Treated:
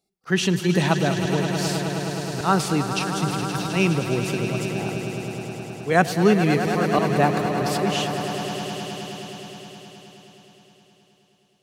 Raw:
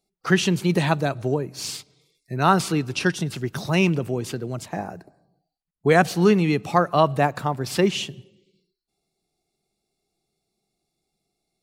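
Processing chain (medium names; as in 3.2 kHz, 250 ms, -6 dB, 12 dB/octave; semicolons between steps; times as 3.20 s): high-pass 41 Hz; slow attack 128 ms; echo with a slow build-up 105 ms, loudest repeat 5, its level -11 dB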